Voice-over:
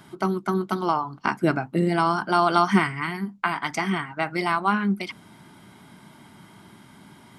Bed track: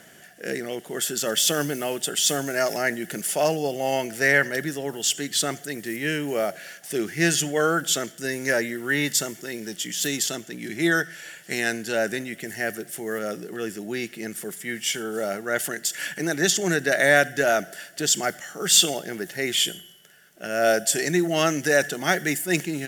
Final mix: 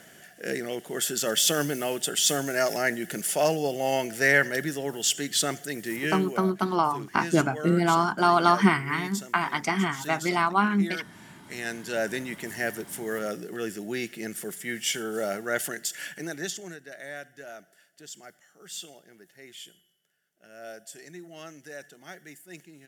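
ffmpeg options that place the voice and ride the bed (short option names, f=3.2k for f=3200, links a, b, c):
-filter_complex "[0:a]adelay=5900,volume=-0.5dB[a];[1:a]volume=10.5dB,afade=t=out:st=6.01:d=0.41:silence=0.237137,afade=t=in:st=11.41:d=0.83:silence=0.251189,afade=t=out:st=15.42:d=1.37:silence=0.1[b];[a][b]amix=inputs=2:normalize=0"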